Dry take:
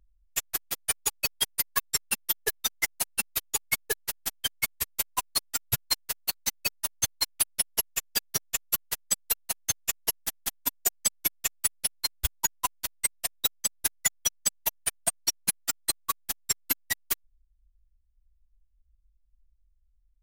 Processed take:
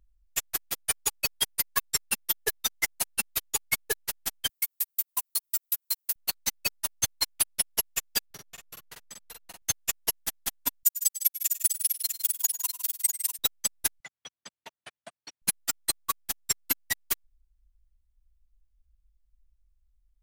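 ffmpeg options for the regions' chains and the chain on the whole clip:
-filter_complex "[0:a]asettb=1/sr,asplit=3[s0][s1][s2];[s0]atrim=end=4.494[s3];[s1]atrim=start=4.49:end=6.16,asetpts=PTS-STARTPTS,afade=t=in:d=0.004:c=qsin,afade=t=out:st=1.666:d=0.004:c=qsin,highpass=320,aemphasis=mode=production:type=50fm,acompressor=threshold=0.0631:ratio=6:attack=3.2:release=140:knee=1:detection=peak[s4];[s2]atrim=start=6.156[s5];[s3][s4]acrossfade=d=0.004:c1=hsin:c2=qsin[s6];[s6][s5]acrossfade=d=0.004:c1=qsin:c2=hsin,asettb=1/sr,asplit=3[s7][s8][s9];[s7]atrim=end=8.264[s10];[s8]atrim=start=8.26:end=9.62,asetpts=PTS-STARTPTS,afade=t=in:d=0.004:c=qsin,afade=t=out:st=1.356:d=0.004:c=qsin,highshelf=f=4700:g=-11,acompressor=threshold=0.00794:ratio=6:attack=3.2:release=140:knee=1:detection=peak,asplit=2[s11][s12];[s12]adelay=46,volume=0.708[s13];[s11][s13]amix=inputs=2:normalize=0,atrim=end_sample=59976[s14];[s9]atrim=start=9.616[s15];[s10][s14]acrossfade=d=0.004:c1=hsin:c2=qsin[s16];[s16][s15]acrossfade=d=0.004:c1=qsin:c2=hsin,asettb=1/sr,asplit=3[s17][s18][s19];[s17]atrim=end=10.834[s20];[s18]atrim=start=10.83:end=13.39,asetpts=PTS-STARTPTS,afade=t=in:d=0.004:c=qsin,afade=t=out:st=2.556:d=0.004:c=qsin,aderivative,aecho=1:1:97|106|156|648:0.178|0.119|0.266|0.473,atrim=end_sample=112896[s21];[s19]atrim=start=13.386[s22];[s20][s21]acrossfade=d=0.004:c1=hsin:c2=qsin[s23];[s23][s22]acrossfade=d=0.004:c1=qsin:c2=hsin,asettb=1/sr,asplit=3[s24][s25][s26];[s24]atrim=end=14.004[s27];[s25]atrim=start=14:end=15.42,asetpts=PTS-STARTPTS,afade=t=in:d=0.004:c=qsin,afade=t=out:st=1.416:d=0.004:c=qsin,highpass=150,lowpass=3200,acompressor=threshold=0.00794:ratio=4:attack=3.2:release=140:knee=1:detection=peak[s28];[s26]atrim=start=15.416[s29];[s27][s28]acrossfade=d=0.004:c1=hsin:c2=qsin[s30];[s30][s29]acrossfade=d=0.004:c1=qsin:c2=hsin"

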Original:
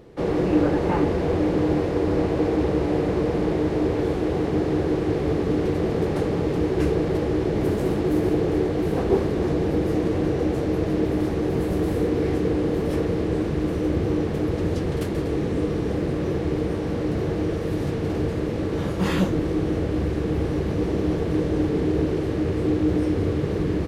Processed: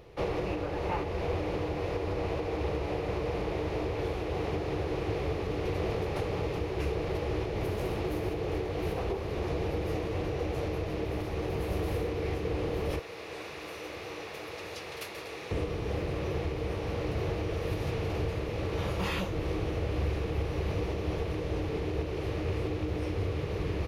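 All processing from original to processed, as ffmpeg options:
-filter_complex "[0:a]asettb=1/sr,asplit=3[s0][s1][s2];[s0]atrim=end=12.994[s3];[s1]atrim=start=12.99:end=15.51,asetpts=PTS-STARTPTS,afade=t=in:d=0.004:c=qsin,afade=t=out:st=2.516:d=0.004:c=qsin,highpass=f=1400:p=1,bandreject=f=3100:w=19[s4];[s2]atrim=start=15.506[s5];[s3][s4]acrossfade=d=0.004:c1=hsin:c2=qsin[s6];[s6][s5]acrossfade=d=0.004:c1=qsin:c2=hsin,equalizer=f=160:t=o:w=0.33:g=-5,equalizer=f=1600:t=o:w=0.33:g=-5,equalizer=f=2500:t=o:w=0.33:g=5,equalizer=f=8000:t=o:w=0.33:g=-9,alimiter=limit=0.133:level=0:latency=1:release=439,equalizer=f=260:w=1.2:g=-13"

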